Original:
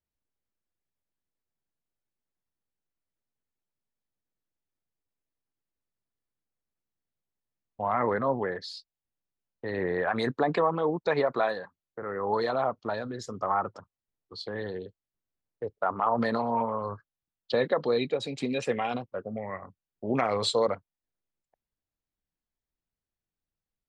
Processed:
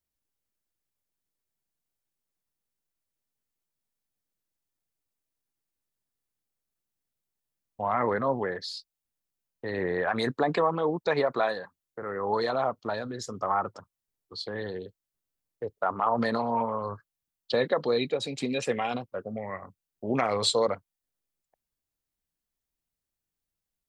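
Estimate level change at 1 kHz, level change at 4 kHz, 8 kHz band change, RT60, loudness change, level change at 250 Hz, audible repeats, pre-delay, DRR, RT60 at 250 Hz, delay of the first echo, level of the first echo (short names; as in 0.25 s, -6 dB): 0.0 dB, +3.0 dB, n/a, none, +0.5 dB, 0.0 dB, none, none, none, none, none, none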